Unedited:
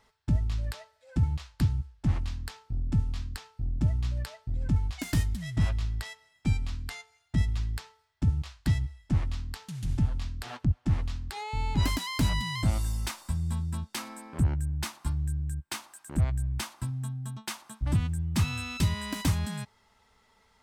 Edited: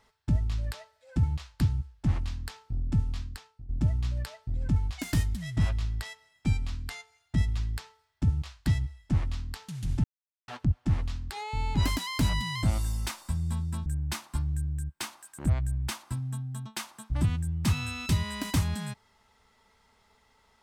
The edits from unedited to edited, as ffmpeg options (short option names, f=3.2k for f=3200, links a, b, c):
-filter_complex "[0:a]asplit=5[a][b][c][d][e];[a]atrim=end=3.69,asetpts=PTS-STARTPTS,afade=t=out:st=3.15:d=0.54:silence=0.133352[f];[b]atrim=start=3.69:end=10.04,asetpts=PTS-STARTPTS,afade=t=in:d=0.004:c=hsin:silence=0.133352,afade=t=out:st=6.346:d=0.004:c=hsin[g];[c]atrim=start=10.04:end=10.48,asetpts=PTS-STARTPTS,volume=0[h];[d]atrim=start=10.48:end=13.862,asetpts=PTS-STARTPTS,afade=t=in:d=0.004:c=hsin[i];[e]atrim=start=14.568[j];[f][g][h][i]concat=n=4:v=0:a=1[k];[k][j]acrossfade=d=0.004:c1=hsin:c2=hsin"